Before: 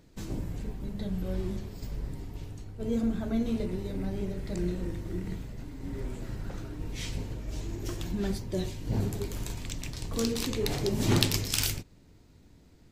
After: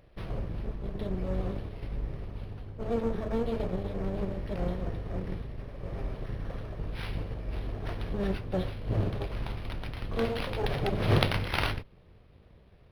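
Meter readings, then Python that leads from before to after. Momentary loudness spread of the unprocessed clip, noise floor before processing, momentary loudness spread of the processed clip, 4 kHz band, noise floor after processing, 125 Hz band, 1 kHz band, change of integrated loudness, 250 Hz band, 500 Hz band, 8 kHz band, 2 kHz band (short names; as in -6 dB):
12 LU, -57 dBFS, 10 LU, -4.5 dB, -56 dBFS, +1.0 dB, +6.0 dB, -0.5 dB, -3.0 dB, +2.0 dB, under -15 dB, +3.5 dB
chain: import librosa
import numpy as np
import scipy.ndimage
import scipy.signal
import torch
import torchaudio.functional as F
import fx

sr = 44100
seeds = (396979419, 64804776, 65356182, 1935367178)

y = fx.lower_of_two(x, sr, delay_ms=1.7)
y = np.interp(np.arange(len(y)), np.arange(len(y))[::6], y[::6])
y = F.gain(torch.from_numpy(y), 2.0).numpy()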